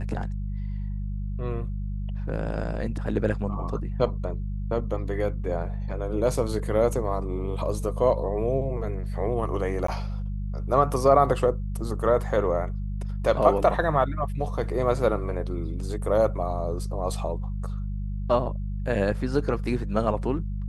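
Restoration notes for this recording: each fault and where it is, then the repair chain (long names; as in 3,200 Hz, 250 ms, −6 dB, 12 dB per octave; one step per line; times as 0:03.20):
mains hum 50 Hz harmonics 4 −30 dBFS
0:09.87–0:09.88: drop-out 14 ms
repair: hum removal 50 Hz, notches 4
repair the gap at 0:09.87, 14 ms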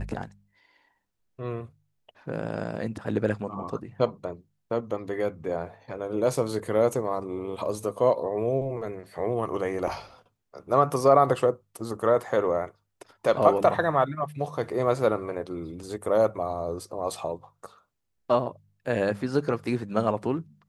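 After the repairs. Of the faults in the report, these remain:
none of them is left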